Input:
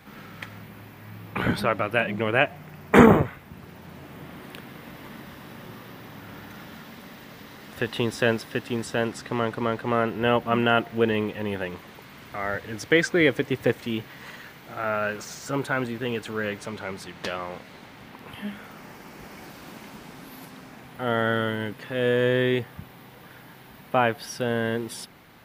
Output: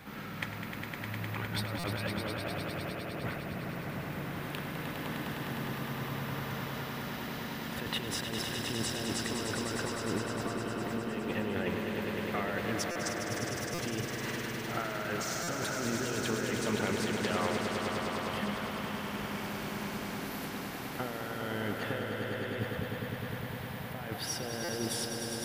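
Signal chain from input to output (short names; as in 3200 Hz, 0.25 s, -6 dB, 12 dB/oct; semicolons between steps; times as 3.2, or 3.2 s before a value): negative-ratio compressor -33 dBFS, ratio -1; on a send: swelling echo 0.102 s, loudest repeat 5, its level -7.5 dB; on the sum: stuck buffer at 1.79/12.91/13.74/15.43/24.64, samples 256, times 7; gain -6 dB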